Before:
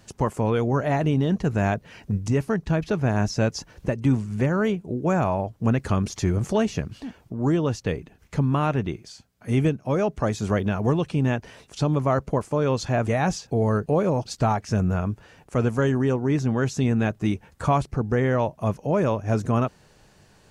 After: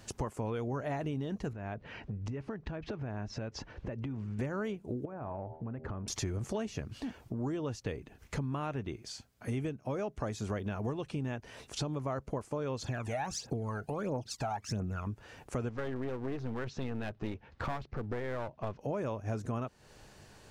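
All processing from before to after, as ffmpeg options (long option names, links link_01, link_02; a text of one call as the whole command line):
ffmpeg -i in.wav -filter_complex "[0:a]asettb=1/sr,asplit=3[link_01][link_02][link_03];[link_01]atrim=end=1.534[link_04];[link_02]atrim=start=1.53:end=4.39,asetpts=PTS-STARTPTS,afade=type=in:duration=0.004:curve=qsin,afade=type=out:start_time=2.856:duration=0.004:curve=qsin,lowpass=3000,acompressor=threshold=-33dB:ratio=4:attack=3.2:release=140:knee=1:detection=peak[link_05];[link_03]atrim=start=4.386[link_06];[link_04][link_05]acrossfade=duration=0.004:curve1=hsin:curve2=qsin[link_07];[link_07][link_06]acrossfade=duration=0.004:curve1=qsin:curve2=hsin,asettb=1/sr,asplit=3[link_08][link_09][link_10];[link_08]atrim=end=5.054[link_11];[link_09]atrim=start=5.05:end=6.08,asetpts=PTS-STARTPTS,afade=type=in:duration=0.004:curve=qsin,afade=type=out:start_time=1.026:duration=0.004:curve=qsin,lowpass=1400,bandreject=frequency=79.22:width_type=h:width=4,bandreject=frequency=158.44:width_type=h:width=4,bandreject=frequency=237.66:width_type=h:width=4,bandreject=frequency=316.88:width_type=h:width=4,bandreject=frequency=396.1:width_type=h:width=4,bandreject=frequency=475.32:width_type=h:width=4,bandreject=frequency=554.54:width_type=h:width=4,bandreject=frequency=633.76:width_type=h:width=4,bandreject=frequency=712.98:width_type=h:width=4,bandreject=frequency=792.2:width_type=h:width=4,bandreject=frequency=871.42:width_type=h:width=4,bandreject=frequency=950.64:width_type=h:width=4,acompressor=threshold=-34dB:ratio=10:attack=3.2:release=140:knee=1:detection=peak[link_12];[link_10]atrim=start=6.076[link_13];[link_11][link_12]acrossfade=duration=0.004:curve1=hsin:curve2=qsin[link_14];[link_14][link_13]acrossfade=duration=0.004:curve1=qsin:curve2=hsin,asettb=1/sr,asplit=3[link_15][link_16][link_17];[link_15]atrim=end=12.824[link_18];[link_16]atrim=start=12.82:end=15.07,asetpts=PTS-STARTPTS,afade=type=in:duration=0.004:curve=qsin,afade=type=out:start_time=2.246:duration=0.004:curve=qsin,highpass=frequency=150:poles=1,acompressor=threshold=-28dB:ratio=1.5:attack=3.2:release=140:knee=1:detection=peak,aphaser=in_gain=1:out_gain=1:delay=1.5:decay=0.69:speed=1.5:type=triangular[link_19];[link_17]atrim=start=15.066[link_20];[link_18][link_19]acrossfade=duration=0.004:curve1=hsin:curve2=qsin[link_21];[link_21][link_20]acrossfade=duration=0.004:curve1=qsin:curve2=hsin,asettb=1/sr,asplit=3[link_22][link_23][link_24];[link_22]atrim=end=15.694[link_25];[link_23]atrim=start=15.69:end=18.81,asetpts=PTS-STARTPTS,afade=type=in:duration=0.004:curve=qsin,afade=type=out:start_time=3.116:duration=0.004:curve=qsin,lowpass=frequency=4500:width=0.5412,lowpass=frequency=4500:width=1.3066,aeval=exprs='clip(val(0),-1,0.0251)':channel_layout=same[link_26];[link_24]atrim=start=18.806[link_27];[link_25][link_26]acrossfade=duration=0.004:curve1=hsin:curve2=qsin[link_28];[link_28][link_27]acrossfade=duration=0.004:curve1=qsin:curve2=hsin,equalizer=frequency=170:width=5.7:gain=-8,acompressor=threshold=-35dB:ratio=4" out.wav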